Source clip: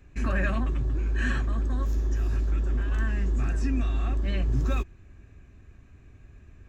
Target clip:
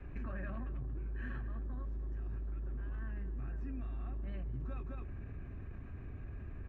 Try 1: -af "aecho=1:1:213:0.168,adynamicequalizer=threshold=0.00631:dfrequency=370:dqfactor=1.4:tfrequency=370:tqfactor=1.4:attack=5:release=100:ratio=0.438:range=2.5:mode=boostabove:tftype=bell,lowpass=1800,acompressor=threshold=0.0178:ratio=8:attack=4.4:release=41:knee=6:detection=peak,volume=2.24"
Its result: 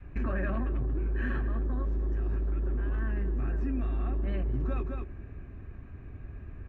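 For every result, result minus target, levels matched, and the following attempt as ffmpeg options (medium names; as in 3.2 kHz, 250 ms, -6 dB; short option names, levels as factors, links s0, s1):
compression: peak gain reduction -12.5 dB; 500 Hz band +2.5 dB
-af "aecho=1:1:213:0.168,adynamicequalizer=threshold=0.00631:dfrequency=370:dqfactor=1.4:tfrequency=370:tqfactor=1.4:attack=5:release=100:ratio=0.438:range=2.5:mode=boostabove:tftype=bell,lowpass=1800,acompressor=threshold=0.00447:ratio=8:attack=4.4:release=41:knee=6:detection=peak,volume=2.24"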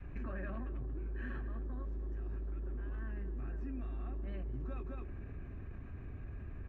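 500 Hz band +3.5 dB
-af "aecho=1:1:213:0.168,adynamicequalizer=threshold=0.00631:dfrequency=120:dqfactor=1.4:tfrequency=120:tqfactor=1.4:attack=5:release=100:ratio=0.438:range=2.5:mode=boostabove:tftype=bell,lowpass=1800,acompressor=threshold=0.00447:ratio=8:attack=4.4:release=41:knee=6:detection=peak,volume=2.24"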